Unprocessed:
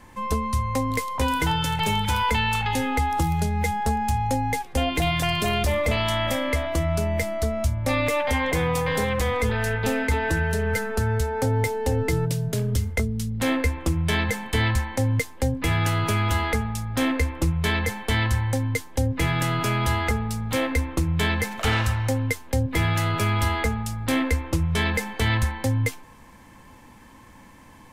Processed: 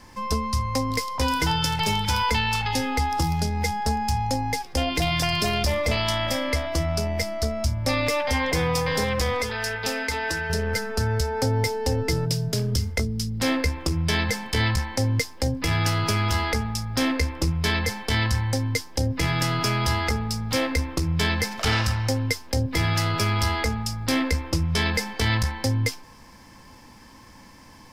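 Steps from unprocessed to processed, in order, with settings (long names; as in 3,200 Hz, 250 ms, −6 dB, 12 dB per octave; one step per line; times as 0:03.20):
parametric band 5,100 Hz +14.5 dB 0.41 octaves
bit reduction 12 bits
0:09.42–0:10.50: low-shelf EQ 370 Hz −12 dB
saturating transformer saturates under 110 Hz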